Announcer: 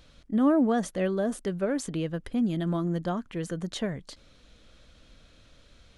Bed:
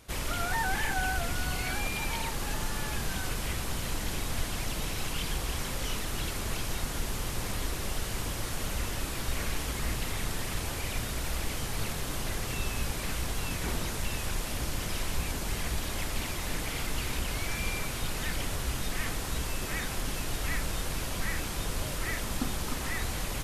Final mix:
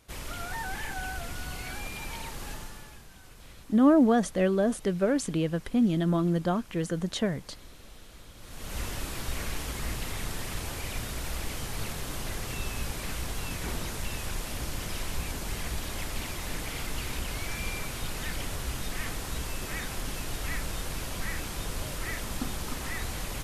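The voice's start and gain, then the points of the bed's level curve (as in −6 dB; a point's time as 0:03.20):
3.40 s, +2.5 dB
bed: 0:02.50 −5.5 dB
0:03.07 −18.5 dB
0:08.34 −18.5 dB
0:08.78 −1.5 dB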